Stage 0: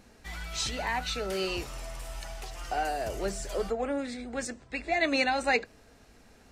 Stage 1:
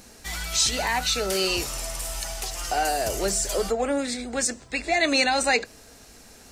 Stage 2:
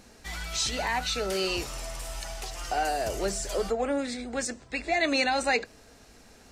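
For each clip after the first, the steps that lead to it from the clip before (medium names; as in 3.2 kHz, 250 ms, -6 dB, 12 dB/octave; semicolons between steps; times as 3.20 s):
tone controls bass -2 dB, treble +11 dB; in parallel at +1 dB: peak limiter -22.5 dBFS, peak gain reduction 10.5 dB
treble shelf 6.2 kHz -10 dB; trim -3 dB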